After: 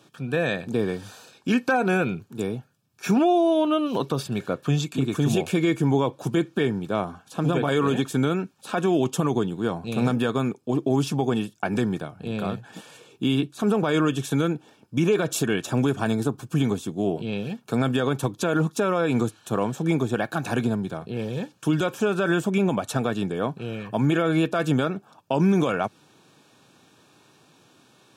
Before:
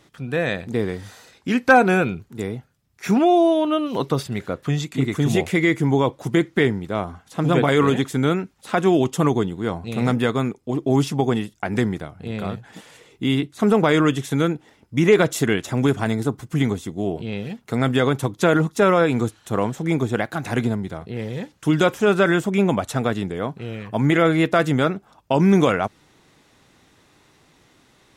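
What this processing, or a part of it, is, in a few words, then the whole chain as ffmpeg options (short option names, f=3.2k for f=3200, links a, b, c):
PA system with an anti-feedback notch: -af "highpass=f=110:w=0.5412,highpass=f=110:w=1.3066,asuperstop=centerf=2000:order=20:qfactor=6.1,alimiter=limit=-12.5dB:level=0:latency=1:release=129"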